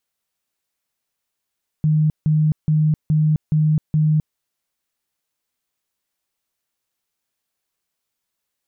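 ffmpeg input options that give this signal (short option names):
-f lavfi -i "aevalsrc='0.224*sin(2*PI*154*mod(t,0.42))*lt(mod(t,0.42),40/154)':d=2.52:s=44100"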